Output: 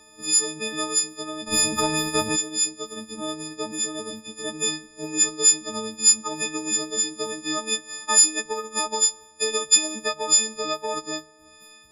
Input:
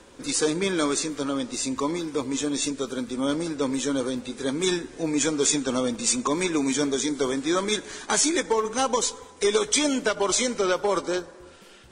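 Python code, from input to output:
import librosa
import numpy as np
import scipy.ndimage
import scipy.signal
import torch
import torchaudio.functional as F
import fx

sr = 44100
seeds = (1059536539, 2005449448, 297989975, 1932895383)

y = fx.freq_snap(x, sr, grid_st=6)
y = fx.transient(y, sr, attack_db=4, sustain_db=-4)
y = fx.spectral_comp(y, sr, ratio=2.0, at=(1.46, 2.35), fade=0.02)
y = F.gain(torch.from_numpy(y), -8.0).numpy()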